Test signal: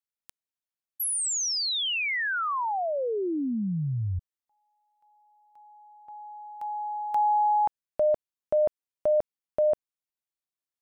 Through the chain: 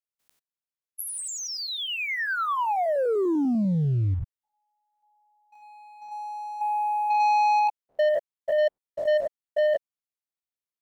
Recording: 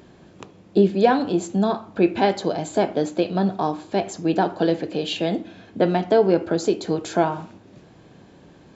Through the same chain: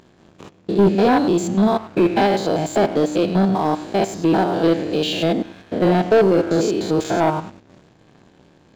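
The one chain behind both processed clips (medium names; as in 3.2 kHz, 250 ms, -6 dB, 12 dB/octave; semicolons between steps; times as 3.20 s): spectrogram pixelated in time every 100 ms; waveshaping leveller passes 2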